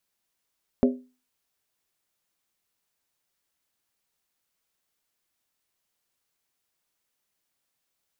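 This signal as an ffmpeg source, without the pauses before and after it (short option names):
-f lavfi -i "aevalsrc='0.2*pow(10,-3*t/0.33)*sin(2*PI*252*t)+0.119*pow(10,-3*t/0.261)*sin(2*PI*401.7*t)+0.0708*pow(10,-3*t/0.226)*sin(2*PI*538.3*t)+0.0422*pow(10,-3*t/0.218)*sin(2*PI*578.6*t)+0.0251*pow(10,-3*t/0.203)*sin(2*PI*668.6*t)':d=0.63:s=44100"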